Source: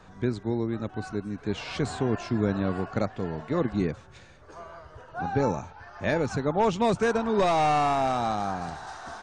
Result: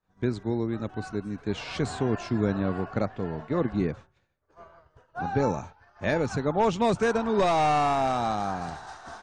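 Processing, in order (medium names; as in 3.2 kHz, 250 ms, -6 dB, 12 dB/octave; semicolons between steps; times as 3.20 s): expander -36 dBFS; 2.54–4.91 s: treble shelf 5.8 kHz -11.5 dB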